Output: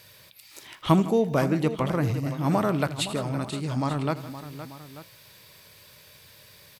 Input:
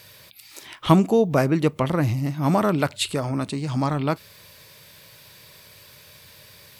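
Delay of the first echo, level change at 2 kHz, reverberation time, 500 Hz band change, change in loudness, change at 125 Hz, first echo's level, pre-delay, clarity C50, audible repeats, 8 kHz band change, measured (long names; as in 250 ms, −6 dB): 80 ms, −3.5 dB, no reverb audible, −3.5 dB, −3.5 dB, −3.5 dB, −17.5 dB, no reverb audible, no reverb audible, 4, −3.5 dB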